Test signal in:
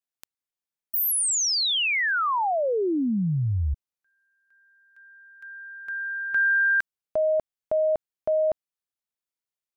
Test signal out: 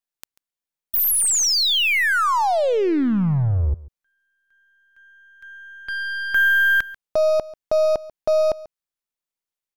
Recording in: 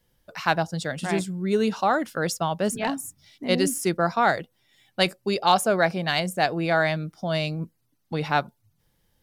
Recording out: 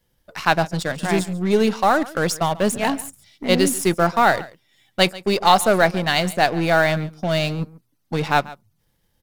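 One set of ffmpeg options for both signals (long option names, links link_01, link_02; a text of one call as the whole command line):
ffmpeg -i in.wav -filter_complex "[0:a]aeval=exprs='if(lt(val(0),0),0.708*val(0),val(0))':channel_layout=same,asplit=2[link_01][link_02];[link_02]acrusher=bits=4:mix=0:aa=0.5,volume=-3.5dB[link_03];[link_01][link_03]amix=inputs=2:normalize=0,aecho=1:1:140:0.106,volume=2dB" out.wav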